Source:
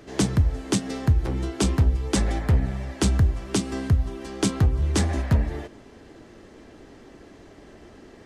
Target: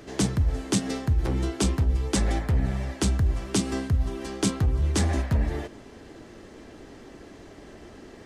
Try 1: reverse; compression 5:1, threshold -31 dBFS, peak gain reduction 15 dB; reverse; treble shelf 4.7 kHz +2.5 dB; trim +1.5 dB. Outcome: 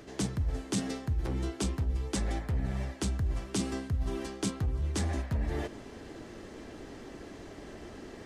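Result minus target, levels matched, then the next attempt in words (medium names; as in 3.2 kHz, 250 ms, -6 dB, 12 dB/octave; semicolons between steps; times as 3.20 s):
compression: peak gain reduction +8 dB
reverse; compression 5:1, threshold -21 dBFS, peak gain reduction 7 dB; reverse; treble shelf 4.7 kHz +2.5 dB; trim +1.5 dB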